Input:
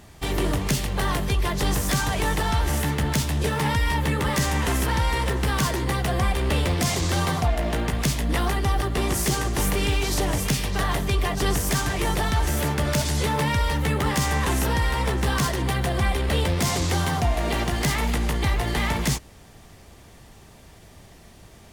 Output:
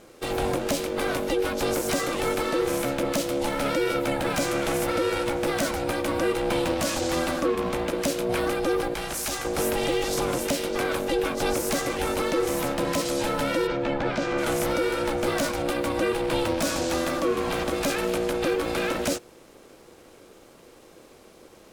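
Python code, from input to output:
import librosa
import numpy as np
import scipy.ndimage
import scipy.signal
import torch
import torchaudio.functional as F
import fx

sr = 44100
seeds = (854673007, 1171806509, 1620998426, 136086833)

y = fx.low_shelf(x, sr, hz=460.0, db=-10.0, at=(8.94, 9.45))
y = y * np.sin(2.0 * np.pi * 420.0 * np.arange(len(y)) / sr)
y = fx.air_absorb(y, sr, metres=160.0, at=(13.66, 14.37), fade=0.02)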